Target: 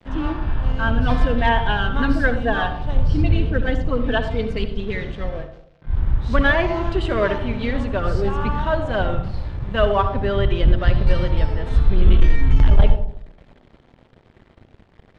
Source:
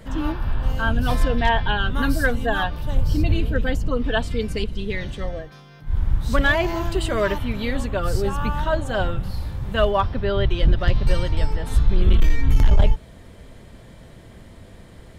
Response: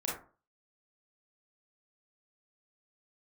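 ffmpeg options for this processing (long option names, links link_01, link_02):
-filter_complex "[0:a]aeval=exprs='sgn(val(0))*max(abs(val(0))-0.00891,0)':channel_layout=same,lowpass=3400,asplit=2[link_01][link_02];[1:a]atrim=start_sample=2205,asetrate=22491,aresample=44100[link_03];[link_02][link_03]afir=irnorm=-1:irlink=0,volume=-14.5dB[link_04];[link_01][link_04]amix=inputs=2:normalize=0"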